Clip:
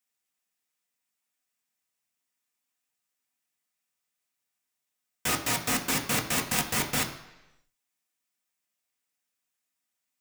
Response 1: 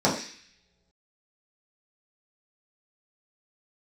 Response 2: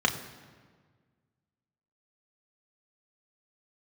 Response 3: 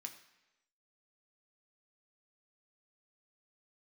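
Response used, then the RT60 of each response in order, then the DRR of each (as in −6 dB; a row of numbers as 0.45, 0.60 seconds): 3; non-exponential decay, 1.6 s, 1.0 s; −7.0, 2.5, 3.0 decibels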